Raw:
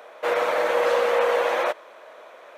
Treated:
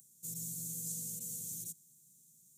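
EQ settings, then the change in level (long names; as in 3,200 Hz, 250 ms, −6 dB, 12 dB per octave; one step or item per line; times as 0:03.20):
Chebyshev band-stop filter 160–7,100 Hz, order 4
parametric band 2,100 Hz +7 dB 0.22 octaves
+10.5 dB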